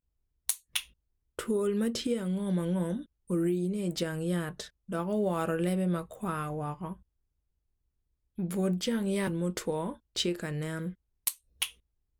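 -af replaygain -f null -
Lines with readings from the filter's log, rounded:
track_gain = +12.9 dB
track_peak = 0.184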